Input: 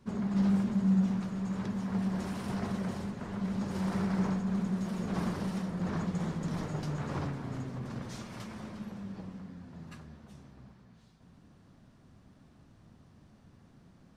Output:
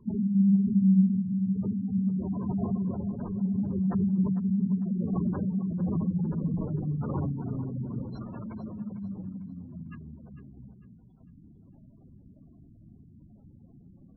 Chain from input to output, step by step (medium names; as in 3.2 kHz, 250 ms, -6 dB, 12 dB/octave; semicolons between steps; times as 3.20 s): spectral gate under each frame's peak -15 dB strong; thinning echo 450 ms, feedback 35%, high-pass 210 Hz, level -12 dB; trim +5.5 dB